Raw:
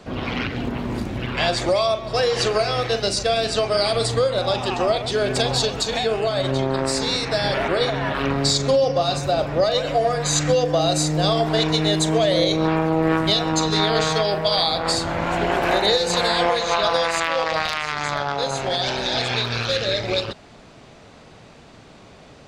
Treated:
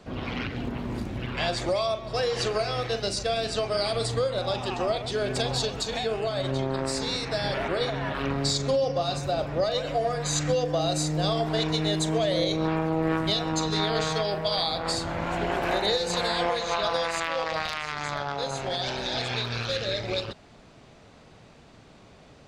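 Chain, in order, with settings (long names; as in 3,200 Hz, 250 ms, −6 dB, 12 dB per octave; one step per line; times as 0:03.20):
low-shelf EQ 180 Hz +3 dB
level −7 dB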